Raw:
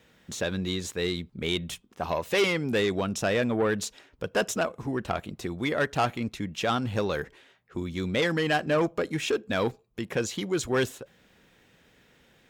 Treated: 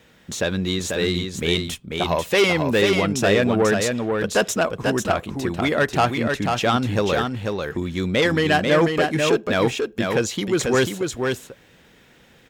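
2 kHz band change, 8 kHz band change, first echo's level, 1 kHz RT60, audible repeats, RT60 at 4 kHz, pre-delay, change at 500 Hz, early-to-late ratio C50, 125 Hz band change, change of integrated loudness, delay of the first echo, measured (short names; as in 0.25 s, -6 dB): +8.0 dB, +8.0 dB, -4.5 dB, none, 1, none, none, +8.0 dB, none, +8.0 dB, +7.5 dB, 0.491 s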